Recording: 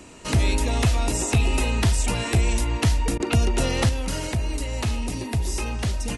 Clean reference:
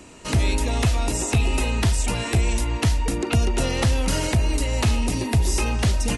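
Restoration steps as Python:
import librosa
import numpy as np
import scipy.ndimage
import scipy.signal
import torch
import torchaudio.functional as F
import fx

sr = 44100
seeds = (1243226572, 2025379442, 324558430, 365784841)

y = fx.fix_interpolate(x, sr, at_s=(3.18,), length_ms=17.0)
y = fx.gain(y, sr, db=fx.steps((0.0, 0.0), (3.89, 5.0)))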